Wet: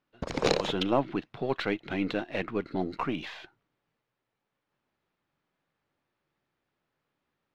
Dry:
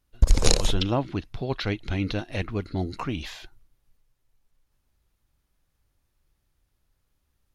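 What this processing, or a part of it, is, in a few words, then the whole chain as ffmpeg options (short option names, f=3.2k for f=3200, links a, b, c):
crystal radio: -af "highpass=270,lowpass=2.7k,equalizer=f=150:t=o:w=0.65:g=5.5,aeval=exprs='if(lt(val(0),0),0.708*val(0),val(0))':c=same,volume=3dB"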